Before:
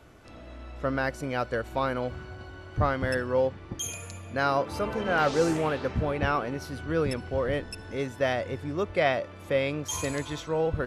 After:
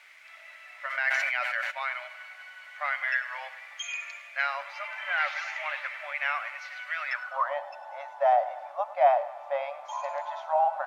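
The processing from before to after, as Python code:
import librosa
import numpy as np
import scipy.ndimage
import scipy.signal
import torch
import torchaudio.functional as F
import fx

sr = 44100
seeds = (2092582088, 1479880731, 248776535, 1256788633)

p1 = fx.spec_quant(x, sr, step_db=15)
p2 = fx.brickwall_bandpass(p1, sr, low_hz=550.0, high_hz=7200.0)
p3 = fx.echo_feedback(p2, sr, ms=101, feedback_pct=51, wet_db=-15.5)
p4 = fx.rider(p3, sr, range_db=5, speed_s=0.5)
p5 = p3 + (p4 * librosa.db_to_amplitude(1.0))
p6 = fx.quant_dither(p5, sr, seeds[0], bits=8, dither='triangular')
p7 = fx.filter_sweep_bandpass(p6, sr, from_hz=2100.0, to_hz=800.0, start_s=7.01, end_s=7.62, q=5.2)
p8 = fx.sustainer(p7, sr, db_per_s=22.0, at=(0.89, 1.7), fade=0.02)
y = p8 * librosa.db_to_amplitude(7.0)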